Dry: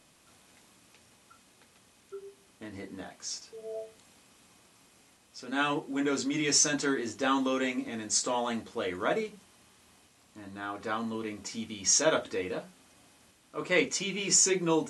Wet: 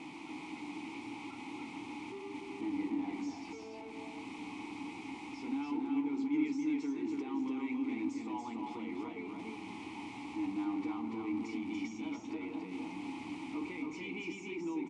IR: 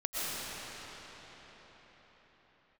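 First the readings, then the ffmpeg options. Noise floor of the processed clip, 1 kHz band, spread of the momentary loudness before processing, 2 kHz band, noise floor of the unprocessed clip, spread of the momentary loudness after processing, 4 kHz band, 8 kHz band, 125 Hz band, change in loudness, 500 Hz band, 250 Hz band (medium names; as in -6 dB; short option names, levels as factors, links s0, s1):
-47 dBFS, -8.5 dB, 20 LU, -11.0 dB, -63 dBFS, 10 LU, -17.5 dB, under -25 dB, -9.5 dB, -10.0 dB, -13.5 dB, -0.5 dB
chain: -filter_complex "[0:a]aeval=exprs='val(0)+0.5*0.0211*sgn(val(0))':c=same,alimiter=limit=0.0891:level=0:latency=1:release=422,acompressor=threshold=0.02:ratio=6,asplit=2[s0][s1];[s1]asubboost=boost=10.5:cutoff=96[s2];[1:a]atrim=start_sample=2205,lowpass=f=1400:w=0.5412,lowpass=f=1400:w=1.3066,adelay=6[s3];[s2][s3]afir=irnorm=-1:irlink=0,volume=0.141[s4];[s0][s4]amix=inputs=2:normalize=0,aresample=22050,aresample=44100,asplit=3[s5][s6][s7];[s5]bandpass=f=300:t=q:w=8,volume=1[s8];[s6]bandpass=f=870:t=q:w=8,volume=0.501[s9];[s7]bandpass=f=2240:t=q:w=8,volume=0.355[s10];[s8][s9][s10]amix=inputs=3:normalize=0,aecho=1:1:286:0.668,volume=2.24"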